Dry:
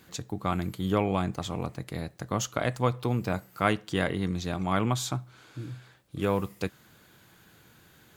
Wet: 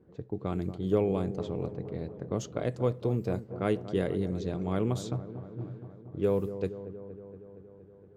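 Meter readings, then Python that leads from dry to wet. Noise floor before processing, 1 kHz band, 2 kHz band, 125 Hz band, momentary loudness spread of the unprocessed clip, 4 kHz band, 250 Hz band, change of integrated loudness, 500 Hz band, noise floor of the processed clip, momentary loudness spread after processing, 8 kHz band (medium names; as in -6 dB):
-58 dBFS, -10.0 dB, -12.0 dB, -2.0 dB, 12 LU, -11.0 dB, -1.5 dB, -2.0 dB, +1.5 dB, -54 dBFS, 15 LU, -12.0 dB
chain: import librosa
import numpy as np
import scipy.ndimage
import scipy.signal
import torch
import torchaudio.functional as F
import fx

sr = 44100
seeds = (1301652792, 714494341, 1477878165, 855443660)

y = fx.curve_eq(x, sr, hz=(290.0, 420.0, 740.0, 1200.0, 2700.0, 4800.0), db=(0, 7, -6, -10, -9, -7))
y = fx.env_lowpass(y, sr, base_hz=960.0, full_db=-23.0)
y = fx.echo_wet_lowpass(y, sr, ms=234, feedback_pct=71, hz=1100.0, wet_db=-12)
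y = y * 10.0 ** (-2.5 / 20.0)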